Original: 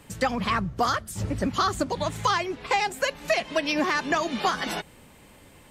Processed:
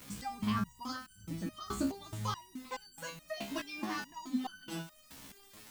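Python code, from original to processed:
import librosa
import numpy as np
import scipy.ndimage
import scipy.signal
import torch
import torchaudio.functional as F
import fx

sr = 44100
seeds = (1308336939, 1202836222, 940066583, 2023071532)

p1 = fx.graphic_eq(x, sr, hz=(250, 500, 2000), db=(10, -9, -6))
p2 = fx.dmg_crackle(p1, sr, seeds[0], per_s=510.0, level_db=-31.0)
p3 = fx.quant_dither(p2, sr, seeds[1], bits=6, dither='triangular')
p4 = p2 + F.gain(torch.from_numpy(p3), -11.0).numpy()
p5 = fx.resonator_held(p4, sr, hz=4.7, low_hz=68.0, high_hz=1500.0)
y = F.gain(torch.from_numpy(p5), -2.0).numpy()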